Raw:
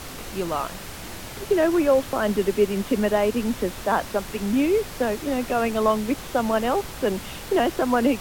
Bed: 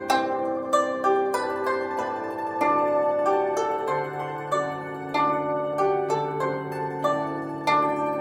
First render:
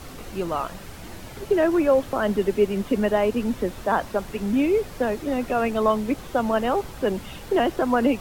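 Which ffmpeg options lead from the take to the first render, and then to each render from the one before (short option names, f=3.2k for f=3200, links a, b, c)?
-af "afftdn=nr=7:nf=-37"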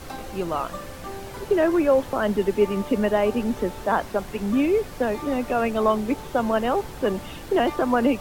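-filter_complex "[1:a]volume=-15.5dB[a];[0:a][a]amix=inputs=2:normalize=0"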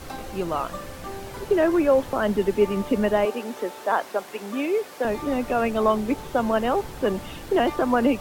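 -filter_complex "[0:a]asettb=1/sr,asplit=3[a][b][c];[a]atrim=end=3.254[d];[b]atrim=start=3.25:end=5.05,asetpts=PTS-STARTPTS,afade=t=in:d=0.004:c=qsin,afade=t=out:st=1.796:d=0.004:c=qsin,highpass=390[e];[c]atrim=start=5.046[f];[d][e]acrossfade=d=0.004:c1=hsin:c2=qsin[g];[g][f]acrossfade=d=0.004:c1=qsin:c2=hsin"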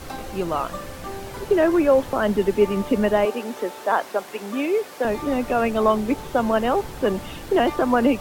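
-af "volume=2dB"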